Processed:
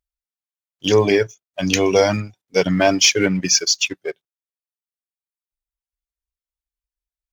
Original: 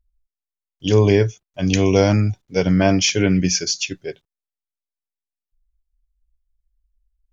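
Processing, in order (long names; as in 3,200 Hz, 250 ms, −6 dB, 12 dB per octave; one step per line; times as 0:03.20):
reverb reduction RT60 1.4 s
high-pass filter 420 Hz 6 dB per octave
leveller curve on the samples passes 1
level +2 dB
AAC 128 kbit/s 44,100 Hz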